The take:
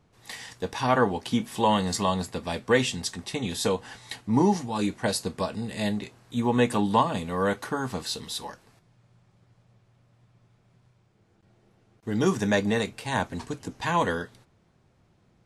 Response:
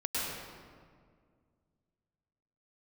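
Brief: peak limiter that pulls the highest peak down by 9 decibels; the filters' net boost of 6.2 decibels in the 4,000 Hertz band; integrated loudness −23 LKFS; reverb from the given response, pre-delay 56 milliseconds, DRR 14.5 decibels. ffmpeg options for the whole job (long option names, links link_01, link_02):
-filter_complex "[0:a]equalizer=frequency=4000:width_type=o:gain=7.5,alimiter=limit=-16dB:level=0:latency=1,asplit=2[link_01][link_02];[1:a]atrim=start_sample=2205,adelay=56[link_03];[link_02][link_03]afir=irnorm=-1:irlink=0,volume=-21dB[link_04];[link_01][link_04]amix=inputs=2:normalize=0,volume=5dB"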